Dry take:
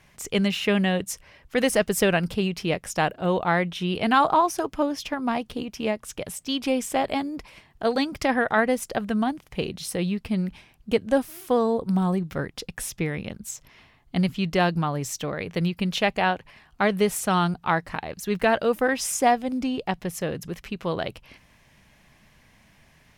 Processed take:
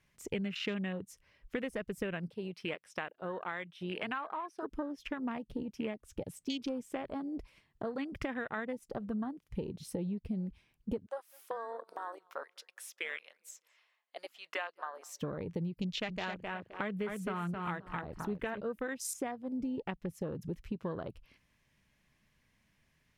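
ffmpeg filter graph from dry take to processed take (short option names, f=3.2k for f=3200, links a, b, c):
-filter_complex "[0:a]asettb=1/sr,asplit=3[a][b][c];[a]atrim=end=2.304[d];[b]atrim=start=2.3:end=4.63,asetpts=PTS-STARTPTS,afade=t=in:d=0.004:c=qsin,afade=t=out:st=2.326:d=0.004:c=qsin,acrossover=split=8100[e][f];[f]acompressor=threshold=-55dB:ratio=4:attack=1:release=60[g];[e][g]amix=inputs=2:normalize=0,highpass=f=780:p=1,equalizer=f=6.8k:t=o:w=0.22:g=-9.5[h];[c]atrim=start=4.626[i];[d][h]acrossfade=d=0.004:c1=hsin:c2=qsin[j];[j][i]acrossfade=d=0.004:c1=qsin:c2=hsin,asettb=1/sr,asplit=3[k][l][m];[k]atrim=end=11.064[n];[l]atrim=start=11.06:end=15.22,asetpts=PTS-STARTPTS,afade=t=in:d=0.004:c=qsin,afade=t=out:st=4.156:d=0.004:c=qsin,highpass=f=630:w=0.5412,highpass=f=630:w=1.3066,asplit=2[o][p];[p]adelay=203,lowpass=f=1.7k:p=1,volume=-18dB,asplit=2[q][r];[r]adelay=203,lowpass=f=1.7k:p=1,volume=0.48,asplit=2[s][t];[t]adelay=203,lowpass=f=1.7k:p=1,volume=0.48,asplit=2[u][v];[v]adelay=203,lowpass=f=1.7k:p=1,volume=0.48[w];[o][q][s][u][w]amix=inputs=5:normalize=0,atrim=end_sample=183456[x];[m]atrim=start=15.216[y];[n][x]acrossfade=d=0.004:c1=hsin:c2=qsin[z];[z][y]acrossfade=d=0.004:c1=qsin:c2=hsin,asettb=1/sr,asplit=3[aa][ab][ac];[aa]atrim=end=15.834[ad];[ab]atrim=start=15.83:end=18.61,asetpts=PTS-STARTPTS,afade=t=in:d=0.004:c=qsin,afade=t=out:st=2.776:d=0.004:c=qsin,aphaser=in_gain=1:out_gain=1:delay=4.5:decay=0.3:speed=1.8:type=triangular,aecho=1:1:261|522|783:0.501|0.11|0.0243,atrim=end_sample=122598[ae];[ac]atrim=start=18.606[af];[ad][ae]acrossfade=d=0.004:c1=hsin:c2=qsin[ag];[ag][af]acrossfade=d=0.004:c1=qsin:c2=hsin,afwtdn=0.0251,acompressor=threshold=-35dB:ratio=6,equalizer=f=750:w=2.3:g=-6.5,volume=1dB"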